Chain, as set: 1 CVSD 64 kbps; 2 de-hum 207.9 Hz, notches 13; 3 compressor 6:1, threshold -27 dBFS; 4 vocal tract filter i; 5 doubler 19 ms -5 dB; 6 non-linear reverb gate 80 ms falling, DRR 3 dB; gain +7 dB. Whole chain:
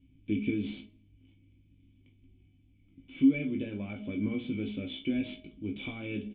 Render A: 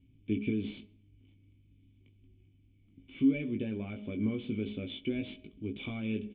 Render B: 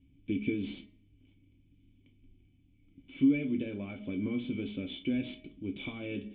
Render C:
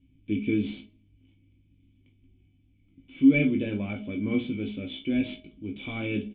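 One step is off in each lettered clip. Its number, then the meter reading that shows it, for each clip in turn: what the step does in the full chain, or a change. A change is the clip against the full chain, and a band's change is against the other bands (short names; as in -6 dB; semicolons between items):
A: 6, loudness change -2.0 LU; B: 5, loudness change -1.5 LU; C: 3, mean gain reduction 3.5 dB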